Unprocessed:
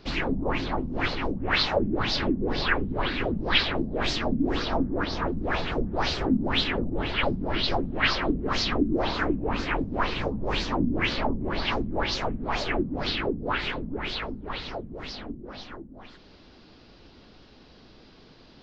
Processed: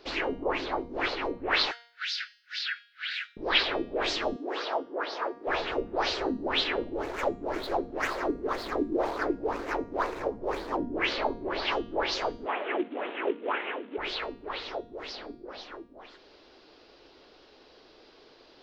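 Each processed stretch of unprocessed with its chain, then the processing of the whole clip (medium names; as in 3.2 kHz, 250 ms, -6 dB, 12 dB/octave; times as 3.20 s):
1.71–3.37 s: steep high-pass 1.4 kHz 96 dB/octave + treble shelf 4.7 kHz +7 dB + compression, threshold -27 dBFS
4.36–5.47 s: high-pass 540 Hz + tilt EQ -1.5 dB/octave
6.85–10.86 s: median filter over 15 samples + low-pass 3.9 kHz 6 dB/octave
12.46–13.98 s: CVSD coder 16 kbps + steep high-pass 200 Hz 48 dB/octave
whole clip: resonant low shelf 270 Hz -13 dB, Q 1.5; de-hum 235.5 Hz, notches 36; trim -1.5 dB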